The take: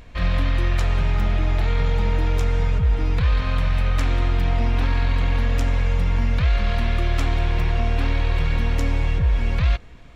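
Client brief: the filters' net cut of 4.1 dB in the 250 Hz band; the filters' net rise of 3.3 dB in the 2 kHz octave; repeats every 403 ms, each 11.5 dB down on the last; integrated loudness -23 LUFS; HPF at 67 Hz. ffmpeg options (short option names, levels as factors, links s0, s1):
-af "highpass=67,equalizer=f=250:t=o:g=-6,equalizer=f=2000:t=o:g=4,aecho=1:1:403|806|1209:0.266|0.0718|0.0194,volume=1.33"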